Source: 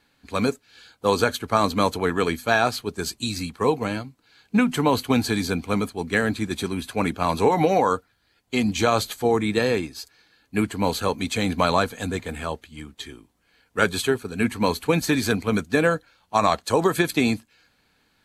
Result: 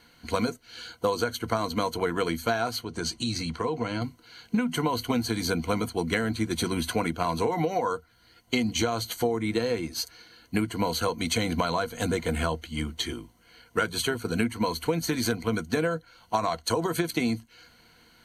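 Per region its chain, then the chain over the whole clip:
2.84–4.02 s: low-pass 7 kHz + compression 3:1, threshold -35 dBFS
whole clip: rippled EQ curve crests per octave 1.9, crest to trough 10 dB; compression 12:1, threshold -29 dBFS; trim +6 dB

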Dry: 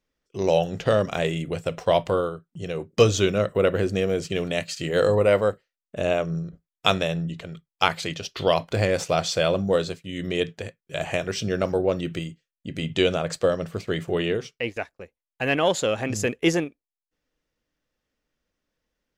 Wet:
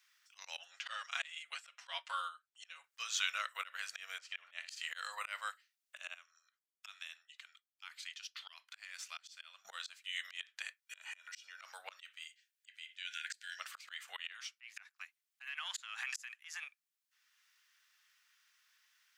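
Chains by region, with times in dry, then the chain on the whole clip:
0.59–2.84 s: low-pass 8.7 kHz + comb 7.3 ms, depth 94% + upward expansion, over -33 dBFS
4.18–4.69 s: low-pass 1.6 kHz 6 dB/octave + flutter echo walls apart 10.4 m, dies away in 0.26 s + three bands expanded up and down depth 100%
6.14–9.65 s: low-pass 1.4 kHz 6 dB/octave + differentiator
10.82–11.62 s: bass shelf 170 Hz -12 dB + comb 2.1 ms, depth 63% + compression 16:1, threshold -36 dBFS
12.26–13.59 s: brick-wall FIR high-pass 1.4 kHz + compression 1.5:1, threshold -40 dBFS
14.33–16.63 s: high-pass 780 Hz 24 dB/octave + compression 5:1, threshold -33 dBFS
whole clip: inverse Chebyshev high-pass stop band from 380 Hz, stop band 60 dB; slow attack 316 ms; three bands compressed up and down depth 40%; trim +1 dB

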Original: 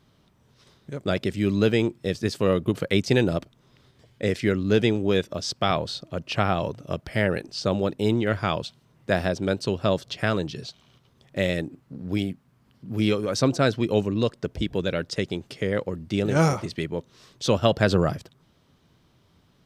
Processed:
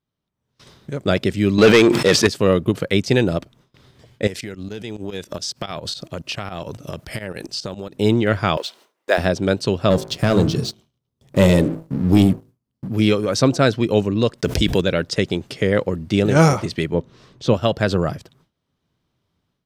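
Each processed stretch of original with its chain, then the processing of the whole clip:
1.58–2.27 s: overdrive pedal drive 22 dB, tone 5.1 kHz, clips at -7 dBFS + decay stretcher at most 70 dB/s
4.27–7.97 s: treble shelf 4.6 kHz +9.5 dB + tremolo saw up 7.2 Hz, depth 85% + compression 16:1, threshold -33 dBFS
8.57–9.18 s: companding laws mixed up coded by mu + high-pass 370 Hz 24 dB/octave
9.90–12.88 s: peaking EQ 1.8 kHz -11 dB 2.6 oct + de-hum 54.19 Hz, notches 29 + waveshaping leveller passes 2
14.38–14.81 s: gate -56 dBFS, range -42 dB + treble shelf 2.9 kHz +9.5 dB + level flattener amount 70%
16.94–17.54 s: low-pass 2.8 kHz 6 dB/octave + bass shelf 490 Hz +5.5 dB
whole clip: gate with hold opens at -48 dBFS; level rider; trim -1 dB

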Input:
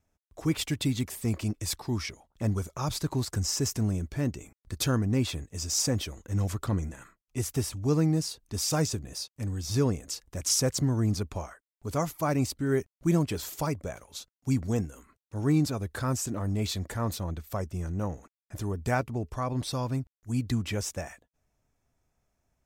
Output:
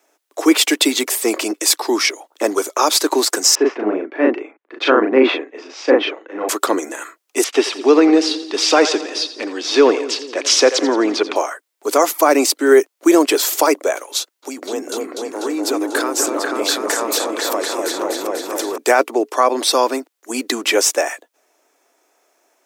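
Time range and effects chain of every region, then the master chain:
3.55–6.49 s: low-pass 2.6 kHz 24 dB/octave + doubling 38 ms -2 dB + three bands expanded up and down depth 70%
7.44–11.36 s: resonant low-pass 3.2 kHz, resonance Q 1.8 + two-band feedback delay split 410 Hz, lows 211 ms, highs 86 ms, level -14 dB
14.18–18.78 s: high-pass 110 Hz + compression 12:1, threshold -33 dBFS + delay with an opening low-pass 246 ms, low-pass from 750 Hz, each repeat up 2 oct, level 0 dB
whole clip: steep high-pass 310 Hz 48 dB/octave; loudness maximiser +21 dB; trim -1 dB

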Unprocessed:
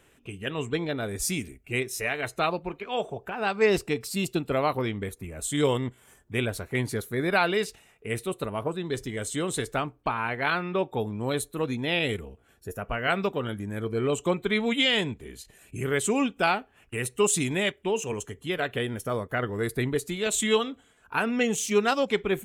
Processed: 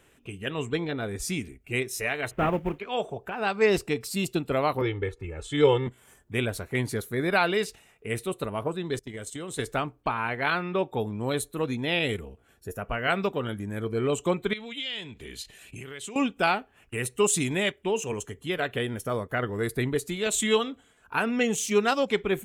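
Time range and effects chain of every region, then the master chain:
0.80–1.61 s: treble shelf 6.9 kHz -9 dB + band-stop 600 Hz
2.31–2.79 s: CVSD coder 16 kbps + bass shelf 400 Hz +9 dB + companded quantiser 8-bit
4.81–5.87 s: low-pass 3.5 kHz + comb 2.3 ms, depth 90%
8.99–9.59 s: gate -35 dBFS, range -19 dB + compression 5:1, threshold -33 dBFS
14.53–16.16 s: compression 20:1, threshold -37 dBFS + peaking EQ 3.4 kHz +10.5 dB 1.7 oct
whole clip: none

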